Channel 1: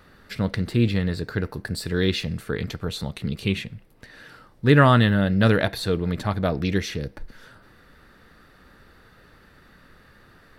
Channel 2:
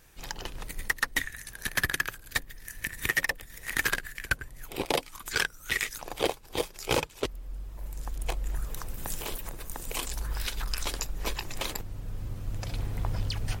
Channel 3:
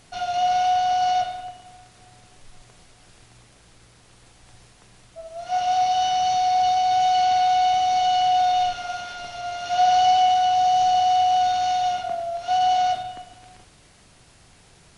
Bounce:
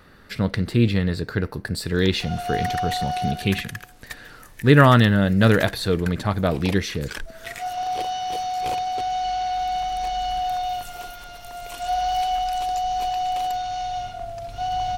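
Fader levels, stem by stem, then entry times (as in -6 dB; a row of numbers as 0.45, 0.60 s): +2.0, -7.5, -6.0 dB; 0.00, 1.75, 2.10 s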